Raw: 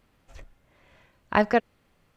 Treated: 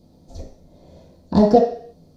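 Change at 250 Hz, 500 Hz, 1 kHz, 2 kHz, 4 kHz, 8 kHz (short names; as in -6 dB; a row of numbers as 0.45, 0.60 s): +11.5 dB, +9.5 dB, +4.0 dB, under -15 dB, +2.5 dB, n/a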